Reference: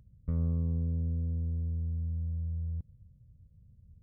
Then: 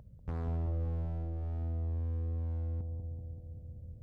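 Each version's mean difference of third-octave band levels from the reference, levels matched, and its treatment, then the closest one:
7.5 dB: parametric band 650 Hz +12.5 dB 1.7 octaves
downward compressor 2 to 1, threshold −34 dBFS, peak gain reduction 5.5 dB
hard clipping −37 dBFS, distortion −10 dB
on a send: bucket-brigade delay 191 ms, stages 1,024, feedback 75%, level −4.5 dB
on the sum: level +3.5 dB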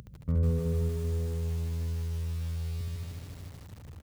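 14.0 dB: high-pass filter 67 Hz 12 dB per octave
upward compression, threshold −46 dBFS
on a send: repeating echo 70 ms, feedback 35%, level −3 dB
on the sum: feedback echo at a low word length 152 ms, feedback 80%, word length 9 bits, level −3 dB
level +4.5 dB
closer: first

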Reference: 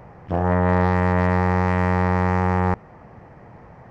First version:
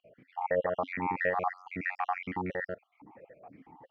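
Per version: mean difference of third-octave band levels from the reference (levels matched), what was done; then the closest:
10.5 dB: time-frequency cells dropped at random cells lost 59%
dynamic equaliser 2,100 Hz, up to +5 dB, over −40 dBFS, Q 0.91
brickwall limiter −11.5 dBFS, peak gain reduction 5.5 dB
formant filter that steps through the vowels 6 Hz
level +5.5 dB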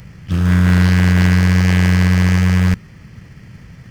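8.0 dB: drawn EQ curve 180 Hz 0 dB, 760 Hz −25 dB, 1,200 Hz −9 dB, 3,500 Hz +14 dB
in parallel at −4 dB: decimation without filtering 30×
on the sum: notch filter 3,800 Hz, Q 9.9
highs frequency-modulated by the lows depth 0.27 ms
level +5 dB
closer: second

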